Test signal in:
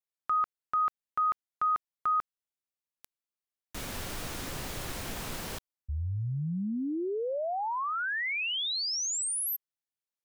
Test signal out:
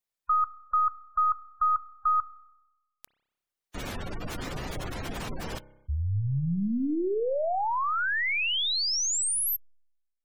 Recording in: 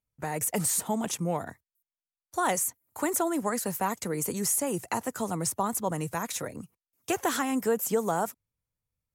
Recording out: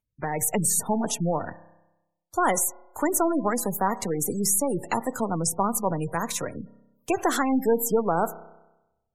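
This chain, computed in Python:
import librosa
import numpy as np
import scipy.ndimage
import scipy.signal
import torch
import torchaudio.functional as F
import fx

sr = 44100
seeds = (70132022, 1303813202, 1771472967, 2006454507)

y = np.where(x < 0.0, 10.0 ** (-3.0 / 20.0) * x, x)
y = fx.rev_spring(y, sr, rt60_s=1.0, pass_ms=(30,), chirp_ms=45, drr_db=14.0)
y = fx.spec_gate(y, sr, threshold_db=-20, keep='strong')
y = y * 10.0 ** (5.5 / 20.0)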